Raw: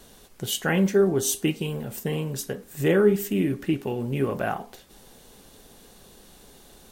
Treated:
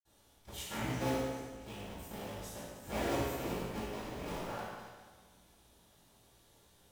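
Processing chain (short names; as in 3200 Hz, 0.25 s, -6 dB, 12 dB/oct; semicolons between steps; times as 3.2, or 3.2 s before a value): cycle switcher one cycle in 3, inverted; 1.11–1.54 passive tone stack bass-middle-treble 10-0-1; reverb RT60 1.5 s, pre-delay 51 ms, DRR -60 dB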